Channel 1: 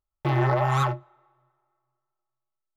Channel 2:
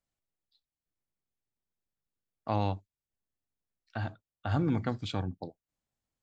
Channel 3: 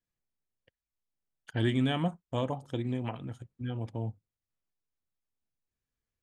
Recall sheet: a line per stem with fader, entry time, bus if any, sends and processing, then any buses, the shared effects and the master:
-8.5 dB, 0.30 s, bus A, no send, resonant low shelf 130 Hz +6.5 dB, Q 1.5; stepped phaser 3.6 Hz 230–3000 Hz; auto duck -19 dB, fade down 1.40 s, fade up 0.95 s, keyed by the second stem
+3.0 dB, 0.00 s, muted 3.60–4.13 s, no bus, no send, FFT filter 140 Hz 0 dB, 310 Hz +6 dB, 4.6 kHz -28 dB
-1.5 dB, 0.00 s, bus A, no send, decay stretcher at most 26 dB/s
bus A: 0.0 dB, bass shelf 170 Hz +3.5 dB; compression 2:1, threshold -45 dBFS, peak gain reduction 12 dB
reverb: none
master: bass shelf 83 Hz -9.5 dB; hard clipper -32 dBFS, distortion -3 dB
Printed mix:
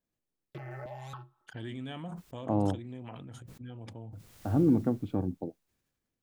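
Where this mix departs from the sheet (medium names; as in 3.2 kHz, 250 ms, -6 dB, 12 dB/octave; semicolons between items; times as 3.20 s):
stem 1: missing resonant low shelf 130 Hz +6.5 dB, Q 1.5; master: missing hard clipper -32 dBFS, distortion -3 dB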